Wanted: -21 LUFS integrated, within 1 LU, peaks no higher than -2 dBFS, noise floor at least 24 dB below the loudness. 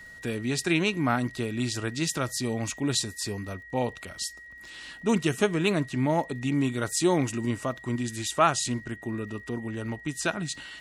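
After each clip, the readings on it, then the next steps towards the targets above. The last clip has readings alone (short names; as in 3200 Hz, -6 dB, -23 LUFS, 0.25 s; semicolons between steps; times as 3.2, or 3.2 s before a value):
ticks 54/s; steady tone 1900 Hz; tone level -44 dBFS; loudness -28.5 LUFS; peak -8.5 dBFS; loudness target -21.0 LUFS
-> de-click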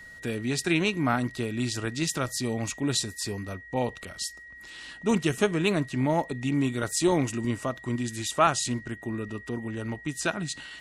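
ticks 0.37/s; steady tone 1900 Hz; tone level -44 dBFS
-> notch 1900 Hz, Q 30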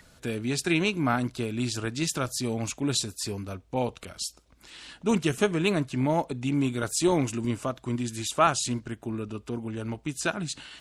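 steady tone none; loudness -28.5 LUFS; peak -8.5 dBFS; loudness target -21.0 LUFS
-> gain +7.5 dB; limiter -2 dBFS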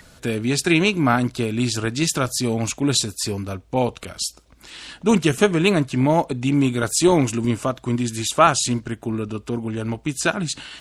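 loudness -21.0 LUFS; peak -2.0 dBFS; noise floor -52 dBFS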